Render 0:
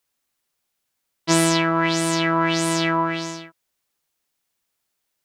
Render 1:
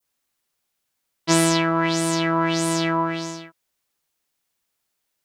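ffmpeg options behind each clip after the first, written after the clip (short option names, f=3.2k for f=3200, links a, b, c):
-af "adynamicequalizer=threshold=0.0158:dfrequency=2300:dqfactor=0.73:tfrequency=2300:tqfactor=0.73:attack=5:release=100:ratio=0.375:range=2:mode=cutabove:tftype=bell"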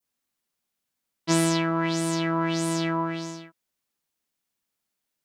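-af "equalizer=f=220:t=o:w=0.92:g=6.5,volume=-6dB"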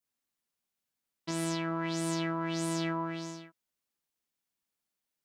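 -af "alimiter=limit=-18.5dB:level=0:latency=1:release=288,volume=-5.5dB"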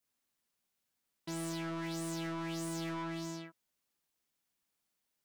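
-af "asoftclip=type=tanh:threshold=-40dB,volume=3dB"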